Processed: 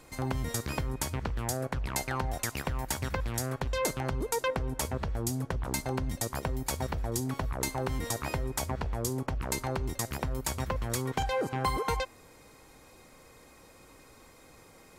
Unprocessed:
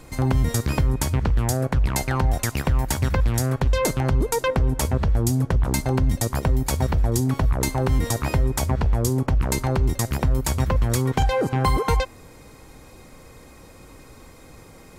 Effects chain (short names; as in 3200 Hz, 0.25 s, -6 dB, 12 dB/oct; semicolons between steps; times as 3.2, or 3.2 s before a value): low shelf 270 Hz -8.5 dB; gain -6 dB